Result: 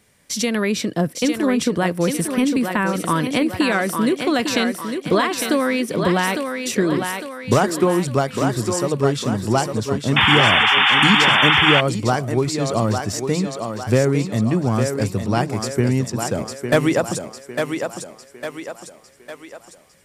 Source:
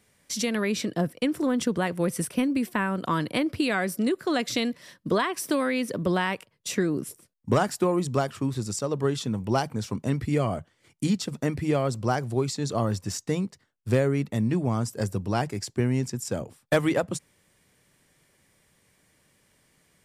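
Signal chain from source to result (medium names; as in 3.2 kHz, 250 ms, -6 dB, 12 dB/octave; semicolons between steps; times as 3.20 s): thinning echo 854 ms, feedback 51%, high-pass 260 Hz, level -5 dB; painted sound noise, 10.16–11.81 s, 740–3600 Hz -21 dBFS; trim +6 dB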